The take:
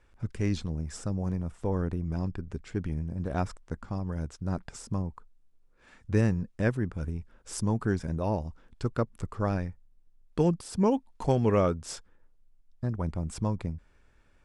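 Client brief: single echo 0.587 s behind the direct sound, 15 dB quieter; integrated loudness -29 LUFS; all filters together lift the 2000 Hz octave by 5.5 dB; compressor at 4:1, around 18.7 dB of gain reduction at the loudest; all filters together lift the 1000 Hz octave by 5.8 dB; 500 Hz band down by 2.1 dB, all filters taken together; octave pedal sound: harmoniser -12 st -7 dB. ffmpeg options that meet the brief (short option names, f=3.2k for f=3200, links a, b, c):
-filter_complex "[0:a]equalizer=f=500:t=o:g=-4.5,equalizer=f=1k:t=o:g=7.5,equalizer=f=2k:t=o:g=4.5,acompressor=threshold=-43dB:ratio=4,aecho=1:1:587:0.178,asplit=2[a][b];[b]asetrate=22050,aresample=44100,atempo=2,volume=-7dB[c];[a][c]amix=inputs=2:normalize=0,volume=16.5dB"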